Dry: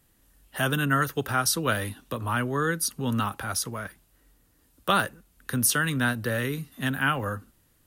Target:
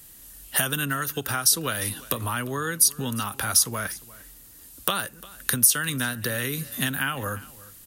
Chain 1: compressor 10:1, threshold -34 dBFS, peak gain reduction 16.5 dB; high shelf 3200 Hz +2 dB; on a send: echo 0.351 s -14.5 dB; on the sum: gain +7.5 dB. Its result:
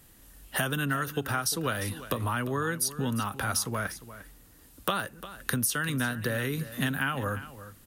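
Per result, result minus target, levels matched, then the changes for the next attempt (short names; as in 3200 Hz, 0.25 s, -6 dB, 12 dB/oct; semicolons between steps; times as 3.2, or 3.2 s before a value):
8000 Hz band -4.5 dB; echo-to-direct +6 dB
change: high shelf 3200 Hz +14 dB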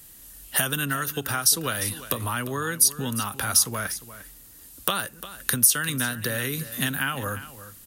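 echo-to-direct +6 dB
change: echo 0.351 s -20.5 dB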